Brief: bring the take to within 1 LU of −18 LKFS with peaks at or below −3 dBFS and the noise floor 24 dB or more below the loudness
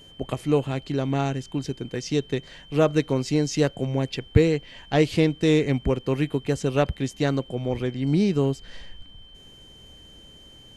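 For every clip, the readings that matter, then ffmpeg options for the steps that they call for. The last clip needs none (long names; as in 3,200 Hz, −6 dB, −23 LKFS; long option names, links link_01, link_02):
interfering tone 3,100 Hz; level of the tone −48 dBFS; integrated loudness −24.5 LKFS; sample peak −4.0 dBFS; target loudness −18.0 LKFS
→ -af "bandreject=frequency=3100:width=30"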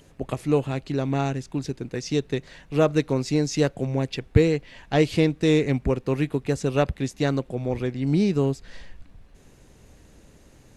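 interfering tone none found; integrated loudness −24.5 LKFS; sample peak −4.5 dBFS; target loudness −18.0 LKFS
→ -af "volume=6.5dB,alimiter=limit=-3dB:level=0:latency=1"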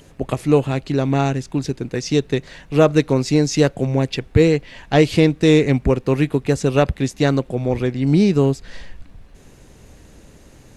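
integrated loudness −18.5 LKFS; sample peak −3.0 dBFS; background noise floor −47 dBFS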